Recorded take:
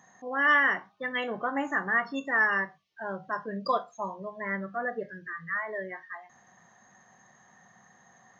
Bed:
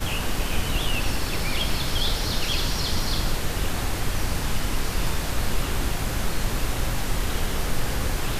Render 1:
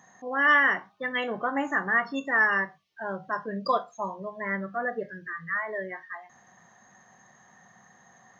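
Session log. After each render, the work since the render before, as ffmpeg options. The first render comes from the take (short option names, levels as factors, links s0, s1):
-af "volume=1.26"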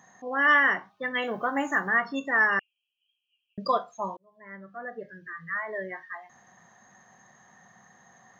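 -filter_complex "[0:a]asettb=1/sr,asplit=3[s0][s1][s2];[s0]atrim=end=1.244[s3];[s1]atrim=start=1.24:end=1.89,asetpts=PTS-STARTPTS,afade=t=in:d=0.004:c=qsin,afade=t=out:st=0.646:d=0.004:c=qsin,aemphasis=mode=production:type=50kf[s4];[s2]atrim=start=1.886[s5];[s3][s4]acrossfade=d=0.004:c1=hsin:c2=qsin[s6];[s6][s5]acrossfade=d=0.004:c1=qsin:c2=hsin,asettb=1/sr,asplit=3[s7][s8][s9];[s7]atrim=end=2.594[s10];[s8]atrim=start=2.59:end=3.58,asetpts=PTS-STARTPTS,afade=t=in:d=0.004:c=qsin,afade=t=out:st=0.986:d=0.004:c=qsin,asuperpass=centerf=2800:order=20:qfactor=3.1[s11];[s9]atrim=start=3.576[s12];[s10][s11]acrossfade=d=0.004:c1=hsin:c2=qsin[s13];[s13][s12]acrossfade=d=0.004:c1=qsin:c2=hsin,asplit=2[s14][s15];[s14]atrim=end=4.17,asetpts=PTS-STARTPTS,afade=t=out:st=4.166:d=0.004:c=hsin[s16];[s15]atrim=start=4.17,asetpts=PTS-STARTPTS,afade=t=in:d=1.75[s17];[s16][s17]concat=n=2:v=0:a=1"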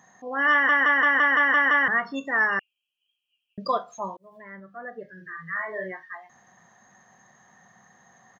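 -filter_complex "[0:a]asettb=1/sr,asplit=3[s0][s1][s2];[s0]atrim=end=3.744[s3];[s1]atrim=start=3.74:end=4.6,asetpts=PTS-STARTPTS,afade=t=in:d=0.004:c=qsin,afade=t=out:st=0.856:d=0.004:c=qsin,acompressor=mode=upward:threshold=0.0141:ratio=2.5:attack=3.2:release=140:knee=2.83:detection=peak[s4];[s2]atrim=start=4.596[s5];[s3][s4]acrossfade=d=0.004:c1=hsin:c2=qsin[s6];[s6][s5]acrossfade=d=0.004:c1=qsin:c2=hsin,asplit=3[s7][s8][s9];[s7]afade=t=out:st=5.16:d=0.02[s10];[s8]asplit=2[s11][s12];[s12]adelay=43,volume=0.631[s13];[s11][s13]amix=inputs=2:normalize=0,afade=t=in:st=5.16:d=0.02,afade=t=out:st=5.91:d=0.02[s14];[s9]afade=t=in:st=5.91:d=0.02[s15];[s10][s14][s15]amix=inputs=3:normalize=0,asplit=9[s16][s17][s18][s19][s20][s21][s22][s23][s24];[s16]atrim=end=0.692[s25];[s17]atrim=start=0.518:end=0.692[s26];[s18]atrim=start=0.518:end=0.692[s27];[s19]atrim=start=0.518:end=0.692[s28];[s20]atrim=start=0.518:end=0.692[s29];[s21]atrim=start=0.518:end=0.692[s30];[s22]atrim=start=0.518:end=0.692[s31];[s23]atrim=start=0.518:end=0.692[s32];[s24]atrim=start=1.878[s33];[s25][s26]acrossfade=d=0.004:c1=hsin:c2=hsin[s34];[s34][s27]acrossfade=d=0.004:c1=hsin:c2=hsin[s35];[s35][s28]acrossfade=d=0.004:c1=hsin:c2=hsin[s36];[s36][s29]acrossfade=d=0.004:c1=hsin:c2=hsin[s37];[s37][s30]acrossfade=d=0.004:c1=hsin:c2=hsin[s38];[s38][s31]acrossfade=d=0.004:c1=hsin:c2=hsin[s39];[s39][s32]acrossfade=d=0.004:c1=hsin:c2=hsin[s40];[s40][s33]acrossfade=d=0.004:c1=hsin:c2=hsin"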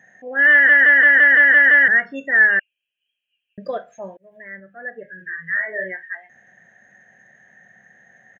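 -af "firequalizer=gain_entry='entry(330,0);entry(590,5);entry(1100,-19);entry(1600,11);entry(2700,3);entry(4500,-15);entry(6500,-7)':delay=0.05:min_phase=1"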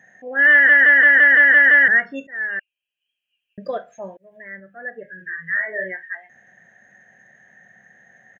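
-filter_complex "[0:a]asplit=2[s0][s1];[s0]atrim=end=2.27,asetpts=PTS-STARTPTS,afade=t=out:st=2.266:d=0.004:c=hsin:silence=0.0794328[s2];[s1]atrim=start=2.27,asetpts=PTS-STARTPTS,afade=t=in:d=1.4:c=qsin:silence=0.0794328[s3];[s2][s3]concat=n=2:v=0:a=1"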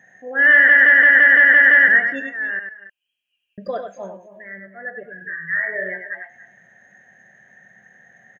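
-af "aecho=1:1:97|278|303:0.473|0.119|0.119"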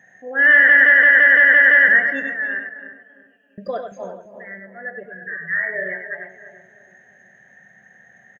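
-filter_complex "[0:a]asplit=2[s0][s1];[s1]adelay=338,lowpass=f=970:p=1,volume=0.355,asplit=2[s2][s3];[s3]adelay=338,lowpass=f=970:p=1,volume=0.44,asplit=2[s4][s5];[s5]adelay=338,lowpass=f=970:p=1,volume=0.44,asplit=2[s6][s7];[s7]adelay=338,lowpass=f=970:p=1,volume=0.44,asplit=2[s8][s9];[s9]adelay=338,lowpass=f=970:p=1,volume=0.44[s10];[s0][s2][s4][s6][s8][s10]amix=inputs=6:normalize=0"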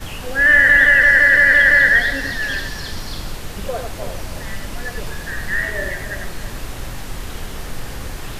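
-filter_complex "[1:a]volume=0.668[s0];[0:a][s0]amix=inputs=2:normalize=0"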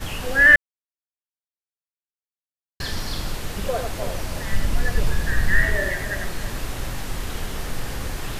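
-filter_complex "[0:a]asettb=1/sr,asplit=3[s0][s1][s2];[s0]atrim=end=4.524[s3];[s1]atrim=start=4.52:end=5.76,asetpts=PTS-STARTPTS,afade=t=in:d=0.004:c=qsin,afade=t=out:st=1.236:d=0.004:c=qsin,lowshelf=f=160:g=9.5[s4];[s2]atrim=start=5.756[s5];[s3][s4]acrossfade=d=0.004:c1=hsin:c2=qsin[s6];[s6][s5]acrossfade=d=0.004:c1=qsin:c2=hsin,asplit=3[s7][s8][s9];[s7]atrim=end=0.56,asetpts=PTS-STARTPTS,afade=t=out:st=0.556:d=0.004:c=hsin[s10];[s8]atrim=start=0.56:end=2.8,asetpts=PTS-STARTPTS,volume=0[s11];[s9]atrim=start=2.8,asetpts=PTS-STARTPTS,afade=t=in:d=0.004:c=hsin[s12];[s10][s11][s12]concat=n=3:v=0:a=1"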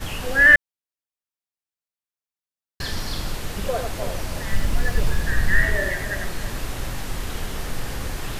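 -filter_complex "[0:a]asettb=1/sr,asplit=3[s0][s1][s2];[s0]atrim=end=4.504[s3];[s1]atrim=start=4.5:end=5.21,asetpts=PTS-STARTPTS,afade=t=in:d=0.004:c=qsin,afade=t=out:st=0.706:d=0.004:c=qsin,acrusher=bits=7:mix=0:aa=0.5[s4];[s2]atrim=start=5.206[s5];[s3][s4]acrossfade=d=0.004:c1=hsin:c2=qsin[s6];[s6][s5]acrossfade=d=0.004:c1=qsin:c2=hsin"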